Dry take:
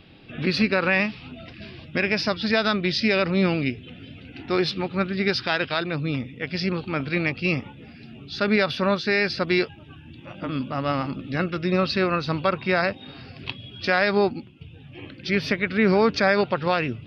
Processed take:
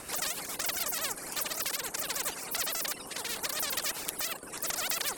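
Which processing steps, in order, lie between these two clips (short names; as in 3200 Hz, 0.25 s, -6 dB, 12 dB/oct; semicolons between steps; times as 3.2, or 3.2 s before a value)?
wide varispeed 3.3×; rotary speaker horn 7 Hz, later 0.75 Hz, at 0.61; spectral compressor 4:1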